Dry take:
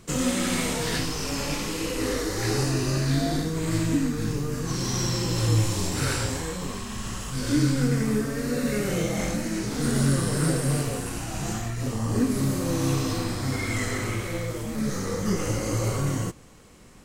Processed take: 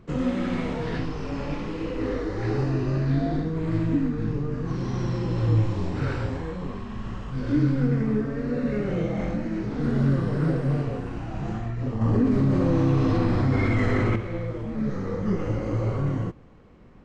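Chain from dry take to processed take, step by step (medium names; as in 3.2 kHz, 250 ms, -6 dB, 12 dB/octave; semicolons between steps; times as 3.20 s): tape spacing loss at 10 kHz 39 dB; 12.01–14.16 s: level flattener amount 70%; trim +1.5 dB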